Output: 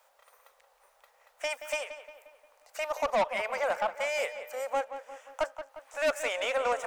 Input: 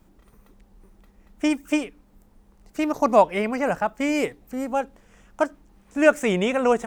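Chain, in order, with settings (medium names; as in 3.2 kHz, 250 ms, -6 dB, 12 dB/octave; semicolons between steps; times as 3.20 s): elliptic high-pass 530 Hz, stop band 40 dB; in parallel at +0.5 dB: compression, threshold -37 dBFS, peak gain reduction 23.5 dB; on the sum: saturation -19 dBFS, distortion -7 dB; filtered feedback delay 177 ms, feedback 53%, low-pass 3.3 kHz, level -10.5 dB; trim -3.5 dB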